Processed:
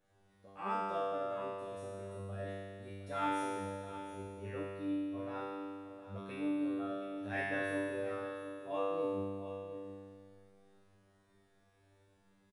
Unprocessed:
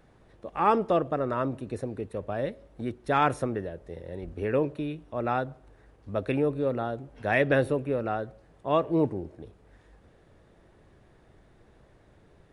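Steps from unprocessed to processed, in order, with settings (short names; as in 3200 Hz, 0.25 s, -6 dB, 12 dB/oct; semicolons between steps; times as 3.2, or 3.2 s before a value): high shelf 5400 Hz +9 dB; resonator 98 Hz, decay 1.9 s, mix 100%; echo 0.714 s -12.5 dB; gain +7 dB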